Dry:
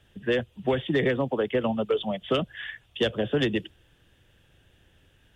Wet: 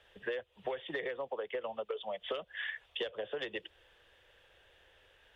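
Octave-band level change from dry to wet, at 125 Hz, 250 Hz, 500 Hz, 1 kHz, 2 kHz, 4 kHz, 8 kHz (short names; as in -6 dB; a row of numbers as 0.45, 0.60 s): -28.5 dB, -22.0 dB, -12.0 dB, -9.5 dB, -8.0 dB, -9.5 dB, n/a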